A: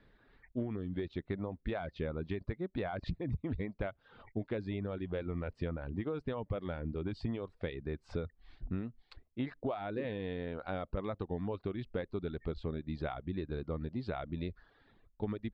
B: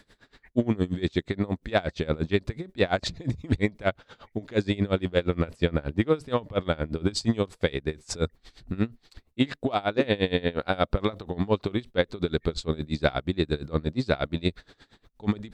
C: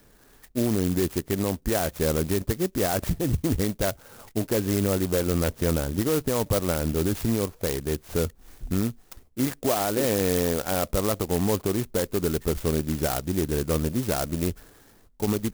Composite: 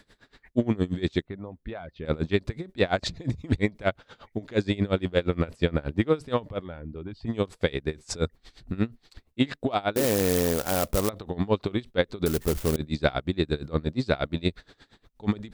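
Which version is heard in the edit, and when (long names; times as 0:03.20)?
B
0:01.22–0:02.05: punch in from A
0:06.57–0:07.32: punch in from A, crossfade 0.16 s
0:09.96–0:11.09: punch in from C
0:12.26–0:12.76: punch in from C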